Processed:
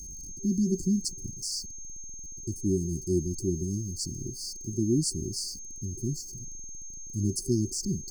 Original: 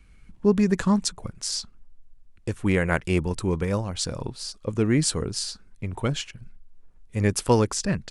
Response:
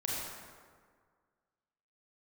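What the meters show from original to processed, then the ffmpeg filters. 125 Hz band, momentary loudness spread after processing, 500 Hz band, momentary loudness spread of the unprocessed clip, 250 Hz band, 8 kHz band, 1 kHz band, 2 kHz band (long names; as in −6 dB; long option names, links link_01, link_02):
−5.0 dB, 13 LU, −8.5 dB, 12 LU, −4.0 dB, −0.5 dB, below −40 dB, below −40 dB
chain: -af "aeval=exprs='val(0)+0.5*0.0188*sgn(val(0))':channel_layout=same,afftfilt=real='re*(1-between(b*sr/4096,390,4300))':imag='im*(1-between(b*sr/4096,390,4300))':win_size=4096:overlap=0.75,aeval=exprs='val(0)+0.0178*sin(2*PI*6400*n/s)':channel_layout=same,adynamicequalizer=threshold=0.0112:dfrequency=390:dqfactor=2.1:tfrequency=390:tqfactor=2.1:attack=5:release=100:ratio=0.375:range=2.5:mode=boostabove:tftype=bell,volume=-6dB"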